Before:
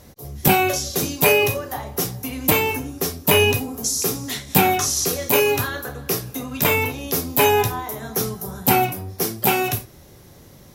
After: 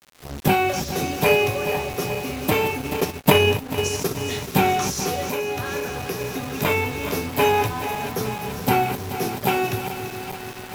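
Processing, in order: backward echo that repeats 215 ms, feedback 81%, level -10 dB; crackle 460 per s -32 dBFS; bit crusher 5-bit; 5.25–6.21 s: compression 6:1, threshold -20 dBFS, peak gain reduction 8.5 dB; treble shelf 5.9 kHz -12 dB; 2.80–4.16 s: transient shaper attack +7 dB, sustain -7 dB; trim -1.5 dB

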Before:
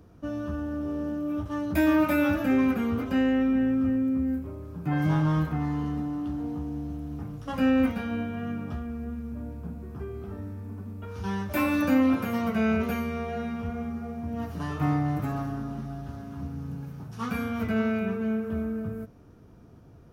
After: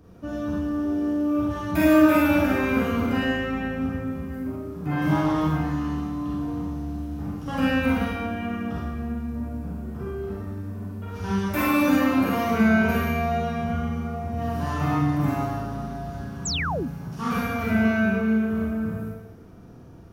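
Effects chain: Schroeder reverb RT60 0.95 s, combs from 33 ms, DRR -5.5 dB; painted sound fall, 16.45–16.88 s, 210–8200 Hz -28 dBFS

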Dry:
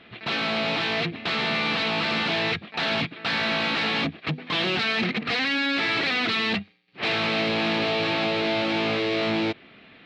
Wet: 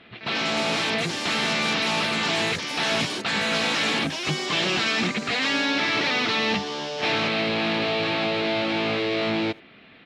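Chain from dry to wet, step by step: speakerphone echo 80 ms, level -23 dB; ever faster or slower copies 152 ms, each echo +5 st, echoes 3, each echo -6 dB; Chebyshev shaper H 6 -35 dB, 8 -39 dB, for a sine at -12.5 dBFS

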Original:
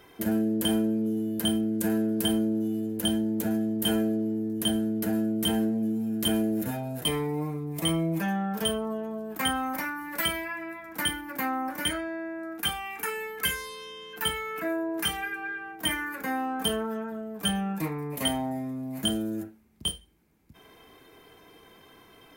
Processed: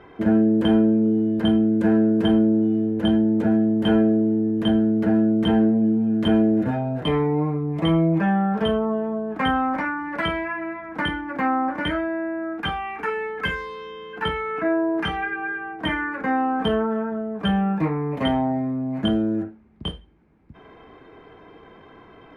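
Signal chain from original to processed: low-pass 1.7 kHz 12 dB/octave; trim +8.5 dB

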